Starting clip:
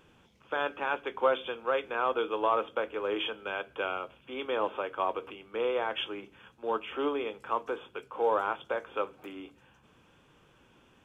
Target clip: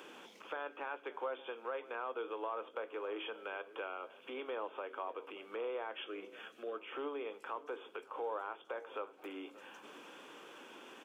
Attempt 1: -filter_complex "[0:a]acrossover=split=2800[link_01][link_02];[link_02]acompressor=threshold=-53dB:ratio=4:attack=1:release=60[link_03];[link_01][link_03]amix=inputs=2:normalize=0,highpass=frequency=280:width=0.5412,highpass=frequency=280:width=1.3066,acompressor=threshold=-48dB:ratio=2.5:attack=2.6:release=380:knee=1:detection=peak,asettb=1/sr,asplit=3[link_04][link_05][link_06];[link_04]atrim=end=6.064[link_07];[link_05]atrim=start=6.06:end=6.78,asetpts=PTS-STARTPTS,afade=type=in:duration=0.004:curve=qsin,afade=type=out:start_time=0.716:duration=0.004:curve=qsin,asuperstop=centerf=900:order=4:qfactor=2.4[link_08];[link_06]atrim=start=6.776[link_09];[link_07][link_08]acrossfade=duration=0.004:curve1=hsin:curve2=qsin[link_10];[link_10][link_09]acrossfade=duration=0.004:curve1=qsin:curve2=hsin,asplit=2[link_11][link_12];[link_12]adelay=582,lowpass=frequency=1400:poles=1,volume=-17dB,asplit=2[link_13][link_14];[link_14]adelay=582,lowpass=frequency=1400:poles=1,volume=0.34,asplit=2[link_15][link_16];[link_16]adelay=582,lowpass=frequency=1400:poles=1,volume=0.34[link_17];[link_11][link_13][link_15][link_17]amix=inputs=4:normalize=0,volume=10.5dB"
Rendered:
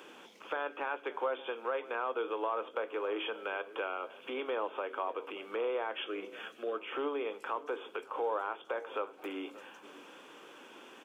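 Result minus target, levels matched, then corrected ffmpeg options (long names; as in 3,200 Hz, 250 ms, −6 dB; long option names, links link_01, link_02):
downward compressor: peak gain reduction −6 dB
-filter_complex "[0:a]acrossover=split=2800[link_01][link_02];[link_02]acompressor=threshold=-53dB:ratio=4:attack=1:release=60[link_03];[link_01][link_03]amix=inputs=2:normalize=0,highpass=frequency=280:width=0.5412,highpass=frequency=280:width=1.3066,acompressor=threshold=-58dB:ratio=2.5:attack=2.6:release=380:knee=1:detection=peak,asettb=1/sr,asplit=3[link_04][link_05][link_06];[link_04]atrim=end=6.064[link_07];[link_05]atrim=start=6.06:end=6.78,asetpts=PTS-STARTPTS,afade=type=in:duration=0.004:curve=qsin,afade=type=out:start_time=0.716:duration=0.004:curve=qsin,asuperstop=centerf=900:order=4:qfactor=2.4[link_08];[link_06]atrim=start=6.776[link_09];[link_07][link_08]acrossfade=duration=0.004:curve1=hsin:curve2=qsin[link_10];[link_10][link_09]acrossfade=duration=0.004:curve1=qsin:curve2=hsin,asplit=2[link_11][link_12];[link_12]adelay=582,lowpass=frequency=1400:poles=1,volume=-17dB,asplit=2[link_13][link_14];[link_14]adelay=582,lowpass=frequency=1400:poles=1,volume=0.34,asplit=2[link_15][link_16];[link_16]adelay=582,lowpass=frequency=1400:poles=1,volume=0.34[link_17];[link_11][link_13][link_15][link_17]amix=inputs=4:normalize=0,volume=10.5dB"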